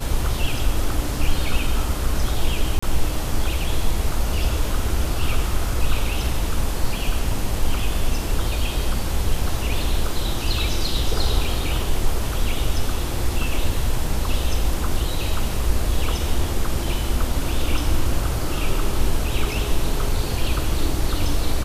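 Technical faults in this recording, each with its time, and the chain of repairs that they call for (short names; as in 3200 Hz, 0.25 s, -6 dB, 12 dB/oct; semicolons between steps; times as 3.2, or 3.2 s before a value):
2.79–2.83 gap 35 ms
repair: interpolate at 2.79, 35 ms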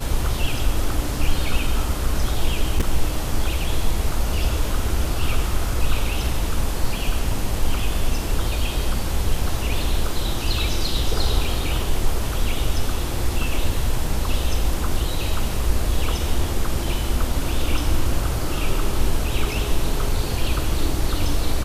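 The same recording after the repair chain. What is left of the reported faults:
none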